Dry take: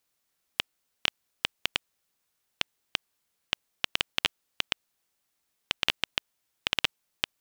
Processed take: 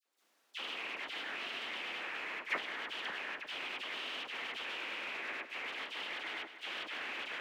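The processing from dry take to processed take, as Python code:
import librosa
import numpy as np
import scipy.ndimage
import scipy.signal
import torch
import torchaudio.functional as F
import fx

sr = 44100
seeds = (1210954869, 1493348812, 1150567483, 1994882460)

p1 = fx.phase_scramble(x, sr, seeds[0], window_ms=100)
p2 = fx.echo_pitch(p1, sr, ms=92, semitones=-3, count=3, db_per_echo=-3.0)
p3 = scipy.signal.sosfilt(scipy.signal.butter(4, 260.0, 'highpass', fs=sr, output='sos'), p2)
p4 = p3 + fx.echo_feedback(p3, sr, ms=102, feedback_pct=51, wet_db=-8.5, dry=0)
p5 = fx.over_compress(p4, sr, threshold_db=-36.0, ratio=-1.0)
p6 = 10.0 ** (-37.5 / 20.0) * np.tanh(p5 / 10.0 ** (-37.5 / 20.0))
p7 = p5 + F.gain(torch.from_numpy(p6), -5.5).numpy()
p8 = fx.lowpass(p7, sr, hz=3900.0, slope=6)
p9 = fx.transient(p8, sr, attack_db=3, sustain_db=-7)
p10 = fx.high_shelf(p9, sr, hz=2400.0, db=-5.0)
p11 = fx.level_steps(p10, sr, step_db=11)
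p12 = fx.dispersion(p11, sr, late='lows', ms=56.0, hz=1700.0)
y = F.gain(torch.from_numpy(p12), 2.5).numpy()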